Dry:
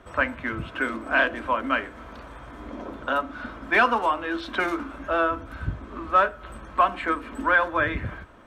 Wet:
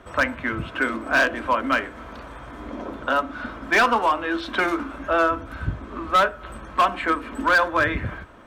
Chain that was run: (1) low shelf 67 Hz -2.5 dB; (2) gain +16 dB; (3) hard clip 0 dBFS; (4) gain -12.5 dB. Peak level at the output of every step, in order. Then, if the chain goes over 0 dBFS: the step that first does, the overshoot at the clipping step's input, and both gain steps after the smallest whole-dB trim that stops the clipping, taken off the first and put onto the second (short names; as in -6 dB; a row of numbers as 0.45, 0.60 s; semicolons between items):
-8.5, +7.5, 0.0, -12.5 dBFS; step 2, 7.5 dB; step 2 +8 dB, step 4 -4.5 dB